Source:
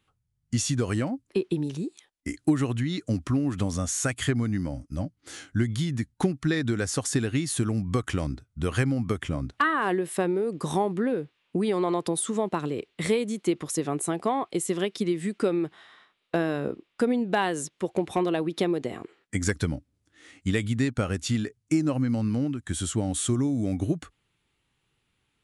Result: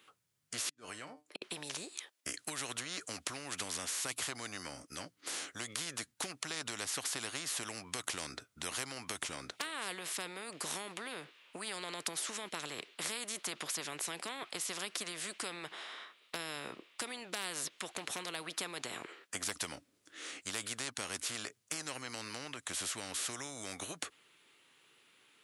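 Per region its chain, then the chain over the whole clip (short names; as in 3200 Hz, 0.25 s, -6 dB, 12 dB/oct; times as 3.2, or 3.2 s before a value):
0.69–1.42 resonator 150 Hz, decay 0.18 s, mix 70% + compressor 12:1, threshold -39 dBFS + flipped gate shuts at -31 dBFS, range -39 dB
whole clip: HPF 400 Hz 12 dB/oct; bell 800 Hz -5.5 dB 0.45 oct; spectral compressor 4:1; gain -3 dB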